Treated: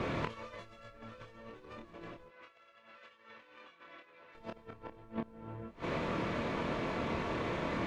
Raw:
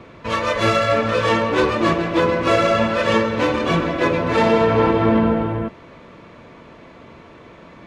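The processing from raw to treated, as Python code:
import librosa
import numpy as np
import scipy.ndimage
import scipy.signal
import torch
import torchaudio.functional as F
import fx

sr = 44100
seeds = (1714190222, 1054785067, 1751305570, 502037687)

y = fx.over_compress(x, sr, threshold_db=-23.0, ratio=-0.5)
y = fx.gate_flip(y, sr, shuts_db=-23.0, range_db=-28)
y = fx.dmg_noise_colour(y, sr, seeds[0], colour='brown', level_db=-64.0)
y = fx.bandpass_q(y, sr, hz=2200.0, q=0.81, at=(2.28, 4.35))
y = fx.doubler(y, sr, ms=26.0, db=-5.0)
y = fx.doppler_dist(y, sr, depth_ms=0.16)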